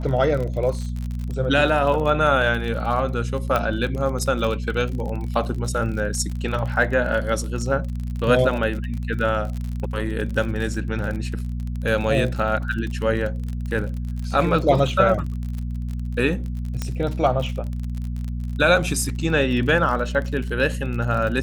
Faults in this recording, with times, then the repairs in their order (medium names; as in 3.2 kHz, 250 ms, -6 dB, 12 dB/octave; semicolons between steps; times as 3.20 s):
crackle 43 per s -28 dBFS
hum 60 Hz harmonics 4 -27 dBFS
3.56 s: pop -9 dBFS
16.82 s: pop -12 dBFS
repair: de-click; de-hum 60 Hz, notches 4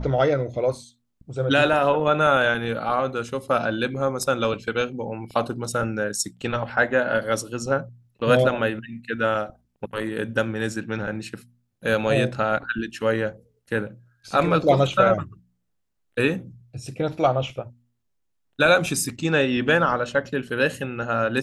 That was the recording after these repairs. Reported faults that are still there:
nothing left